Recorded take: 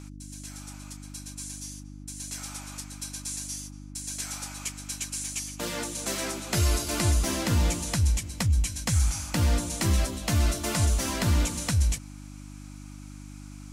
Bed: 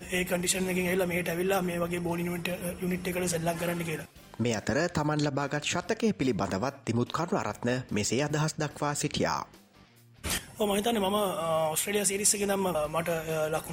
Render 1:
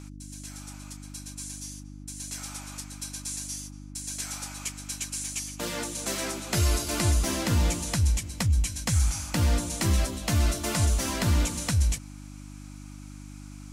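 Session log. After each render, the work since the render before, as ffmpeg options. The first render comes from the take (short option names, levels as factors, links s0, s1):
-af anull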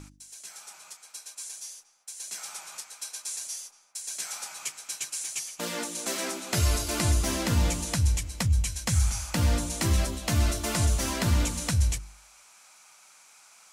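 -af "bandreject=f=50:t=h:w=4,bandreject=f=100:t=h:w=4,bandreject=f=150:t=h:w=4,bandreject=f=200:t=h:w=4,bandreject=f=250:t=h:w=4,bandreject=f=300:t=h:w=4,bandreject=f=350:t=h:w=4"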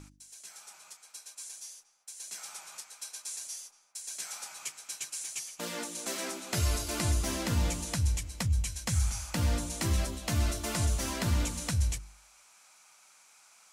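-af "volume=0.596"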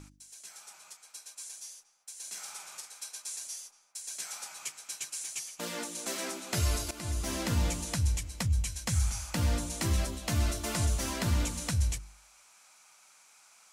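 -filter_complex "[0:a]asettb=1/sr,asplit=3[s0][s1][s2];[s0]atrim=end=2.164[s3];[s1]atrim=start=2.16:end=3.06,asetpts=PTS-STARTPTS,afade=t=in:d=0.004:c=qsin,afade=t=out:st=0.896:d=0.004:c=qsin,asplit=2[s4][s5];[s5]adelay=47,volume=0.447[s6];[s4][s6]amix=inputs=2:normalize=0,atrim=end_sample=39690[s7];[s2]atrim=start=3.056[s8];[s3][s7]acrossfade=d=0.004:c1=hsin:c2=qsin[s9];[s9][s8]acrossfade=d=0.004:c1=qsin:c2=hsin,asplit=2[s10][s11];[s10]atrim=end=6.91,asetpts=PTS-STARTPTS,afade=t=out:st=6.906:d=0.004:c=hsin:silence=0.177828[s12];[s11]atrim=start=6.91,asetpts=PTS-STARTPTS,afade=t=in:d=0.48:silence=0.177828[s13];[s12][s13]concat=n=2:v=0:a=1"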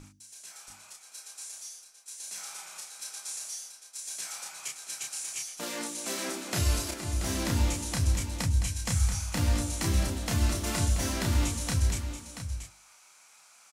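-filter_complex "[0:a]asplit=2[s0][s1];[s1]adelay=31,volume=0.708[s2];[s0][s2]amix=inputs=2:normalize=0,aecho=1:1:682:0.335"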